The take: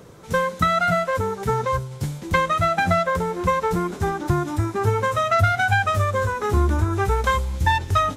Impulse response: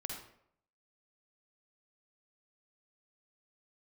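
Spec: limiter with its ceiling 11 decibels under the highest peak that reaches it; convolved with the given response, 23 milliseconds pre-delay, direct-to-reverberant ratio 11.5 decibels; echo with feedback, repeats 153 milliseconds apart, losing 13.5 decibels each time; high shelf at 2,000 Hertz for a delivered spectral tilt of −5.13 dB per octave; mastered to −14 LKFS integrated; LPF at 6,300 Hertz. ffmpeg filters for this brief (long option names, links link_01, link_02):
-filter_complex "[0:a]lowpass=6300,highshelf=frequency=2000:gain=8.5,alimiter=limit=-12dB:level=0:latency=1,aecho=1:1:153|306:0.211|0.0444,asplit=2[link_01][link_02];[1:a]atrim=start_sample=2205,adelay=23[link_03];[link_02][link_03]afir=irnorm=-1:irlink=0,volume=-11dB[link_04];[link_01][link_04]amix=inputs=2:normalize=0,volume=7.5dB"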